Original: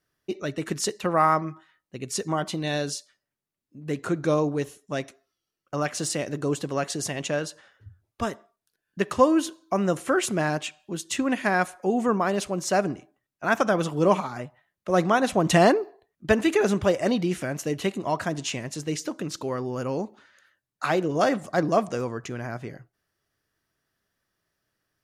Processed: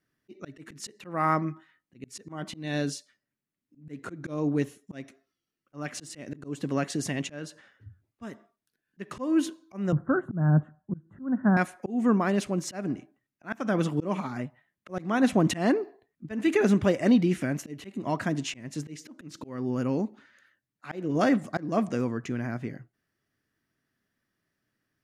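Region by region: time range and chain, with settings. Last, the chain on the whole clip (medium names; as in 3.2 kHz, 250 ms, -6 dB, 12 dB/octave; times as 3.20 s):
9.92–11.57 s: elliptic low-pass 1.5 kHz + resonant low shelf 220 Hz +10.5 dB, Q 1.5 + three bands expanded up and down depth 40%
whole clip: graphic EQ 125/250/2000 Hz +5/+11/+6 dB; slow attack 259 ms; trim -6 dB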